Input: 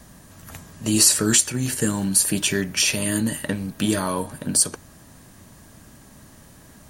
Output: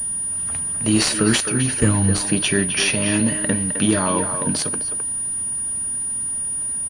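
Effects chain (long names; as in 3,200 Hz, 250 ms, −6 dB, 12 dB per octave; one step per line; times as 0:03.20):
0:01.80–0:02.25: sub-octave generator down 1 octave, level 0 dB
far-end echo of a speakerphone 260 ms, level −7 dB
switching amplifier with a slow clock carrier 9,600 Hz
level +3.5 dB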